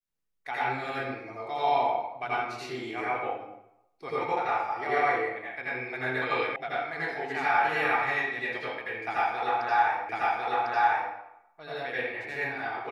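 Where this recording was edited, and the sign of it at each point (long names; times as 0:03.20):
0:06.56: cut off before it has died away
0:10.09: the same again, the last 1.05 s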